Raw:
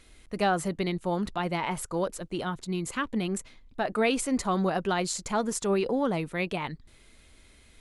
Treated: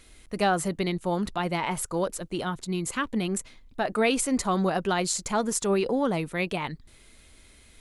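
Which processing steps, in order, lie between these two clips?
high shelf 6800 Hz +5.5 dB; gain +1.5 dB

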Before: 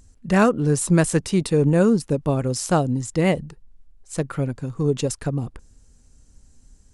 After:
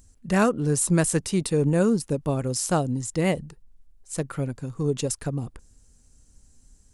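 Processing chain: high shelf 8000 Hz +10 dB; gain -4 dB

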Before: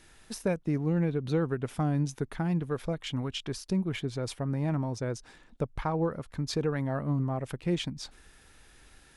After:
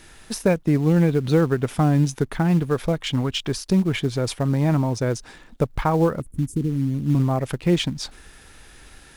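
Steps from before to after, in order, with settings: 6.2–7.15 elliptic band-stop 310–8800 Hz, stop band 40 dB; in parallel at -6.5 dB: short-mantissa float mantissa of 2-bit; on the sum: gain +6.5 dB

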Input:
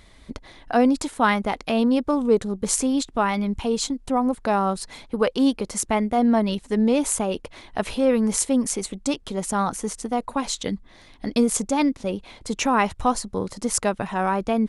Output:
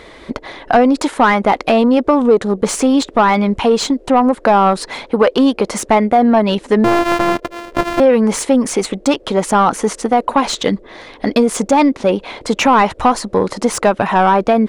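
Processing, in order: 6.84–8 sample sorter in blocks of 128 samples; compressor 3:1, threshold -21 dBFS, peak gain reduction 6.5 dB; overdrive pedal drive 19 dB, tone 1400 Hz, clips at -6 dBFS; band noise 300–580 Hz -52 dBFS; gain +7.5 dB

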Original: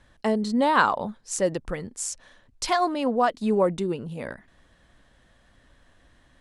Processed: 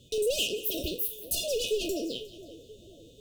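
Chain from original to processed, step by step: spectral trails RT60 0.58 s; notch comb 330 Hz; hard clip -25 dBFS, distortion -6 dB; speed mistake 7.5 ips tape played at 15 ips; on a send: split-band echo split 1500 Hz, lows 0.49 s, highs 0.179 s, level -16 dB; on the sum: FFT band-reject 690–2500 Hz; gain +2 dB

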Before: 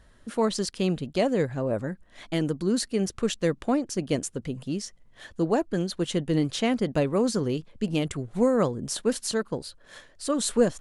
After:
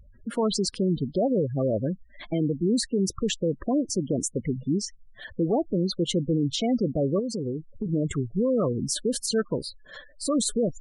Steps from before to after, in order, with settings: 1.26–1.74 CVSD 16 kbps; spectral gate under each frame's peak -15 dB strong; limiter -21.5 dBFS, peak gain reduction 11.5 dB; 7.19–7.86 compressor 3:1, threshold -34 dBFS, peak gain reduction 7 dB; gain +5 dB

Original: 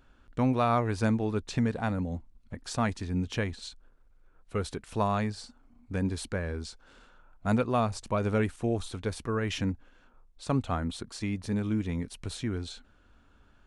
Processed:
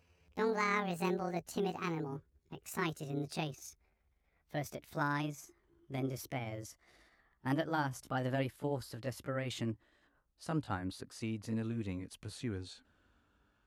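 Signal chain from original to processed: gliding pitch shift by +10 st ending unshifted; HPF 62 Hz; gain -6.5 dB

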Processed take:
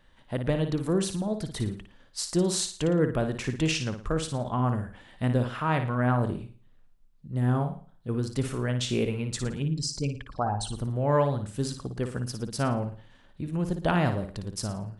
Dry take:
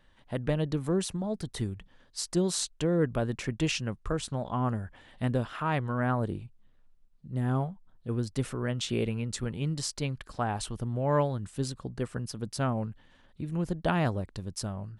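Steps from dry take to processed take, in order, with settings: 9.62–10.73 formant sharpening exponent 2; flutter echo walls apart 9.7 m, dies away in 0.41 s; gain +2 dB

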